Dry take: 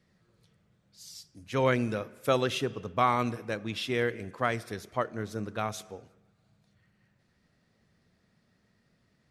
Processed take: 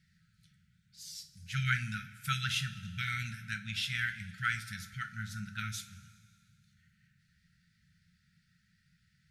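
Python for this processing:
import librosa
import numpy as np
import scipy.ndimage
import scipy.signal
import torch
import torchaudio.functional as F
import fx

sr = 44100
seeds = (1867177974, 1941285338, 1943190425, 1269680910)

y = fx.brickwall_bandstop(x, sr, low_hz=210.0, high_hz=1300.0)
y = fx.rev_double_slope(y, sr, seeds[0], early_s=0.26, late_s=2.2, knee_db=-18, drr_db=5.5)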